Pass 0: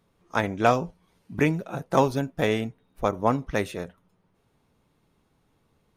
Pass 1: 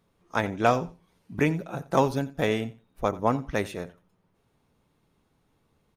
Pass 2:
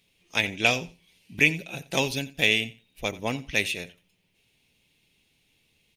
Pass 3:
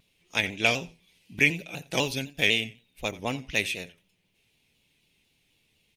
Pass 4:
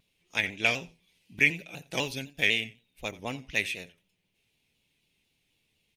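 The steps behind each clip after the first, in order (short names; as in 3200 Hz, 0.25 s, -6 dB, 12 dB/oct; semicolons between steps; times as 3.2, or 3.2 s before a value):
feedback echo 88 ms, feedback 18%, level -19 dB; gain -1.5 dB
resonant high shelf 1800 Hz +12.5 dB, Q 3; gain -4 dB
shaped vibrato saw down 4 Hz, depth 100 cents; gain -1.5 dB
dynamic EQ 1900 Hz, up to +6 dB, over -36 dBFS, Q 1.6; gain -5 dB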